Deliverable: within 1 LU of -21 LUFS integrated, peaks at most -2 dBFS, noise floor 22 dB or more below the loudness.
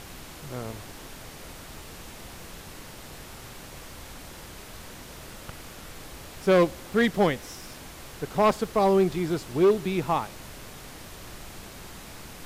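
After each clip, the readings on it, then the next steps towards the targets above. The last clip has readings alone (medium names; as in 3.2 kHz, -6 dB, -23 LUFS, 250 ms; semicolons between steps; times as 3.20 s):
clipped samples 0.5%; clipping level -14.5 dBFS; noise floor -44 dBFS; noise floor target -47 dBFS; loudness -25.0 LUFS; peak level -14.5 dBFS; loudness target -21.0 LUFS
-> clip repair -14.5 dBFS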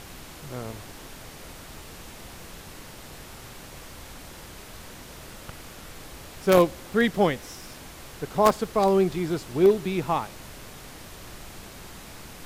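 clipped samples 0.0%; noise floor -44 dBFS; noise floor target -46 dBFS
-> noise print and reduce 6 dB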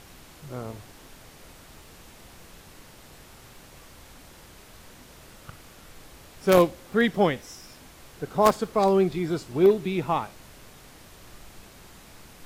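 noise floor -50 dBFS; loudness -24.0 LUFS; peak level -5.5 dBFS; loudness target -21.0 LUFS
-> trim +3 dB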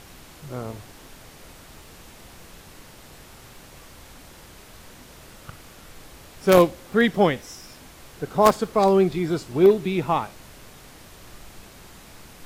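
loudness -21.0 LUFS; peak level -2.5 dBFS; noise floor -47 dBFS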